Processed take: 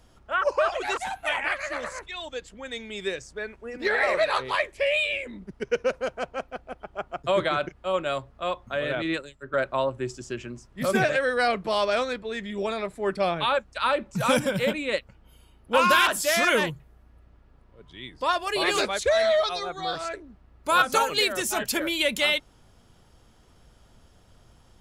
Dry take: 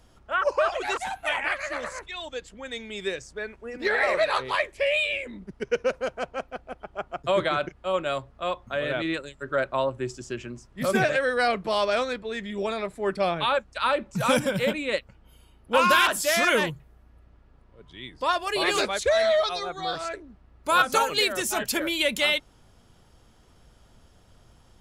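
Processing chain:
0:08.95–0:09.54: multiband upward and downward expander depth 100%

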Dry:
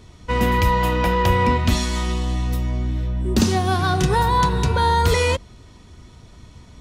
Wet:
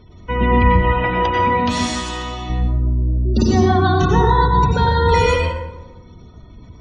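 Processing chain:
0:00.92–0:02.50: high-pass filter 310 Hz 6 dB per octave
gate on every frequency bin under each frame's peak −25 dB strong
dense smooth reverb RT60 1 s, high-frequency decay 0.55×, pre-delay 80 ms, DRR −1.5 dB

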